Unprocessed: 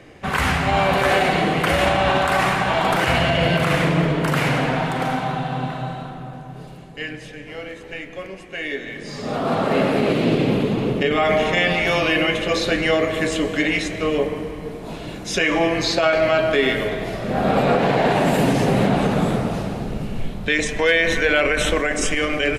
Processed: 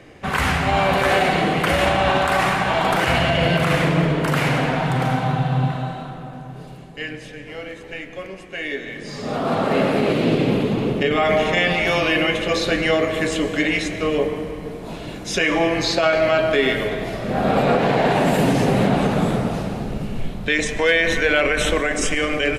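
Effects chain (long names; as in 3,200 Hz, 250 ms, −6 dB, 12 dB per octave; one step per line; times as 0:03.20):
0:04.85–0:05.76: parametric band 120 Hz +11.5 dB 0.65 octaves
on a send: convolution reverb RT60 1.3 s, pre-delay 101 ms, DRR 18 dB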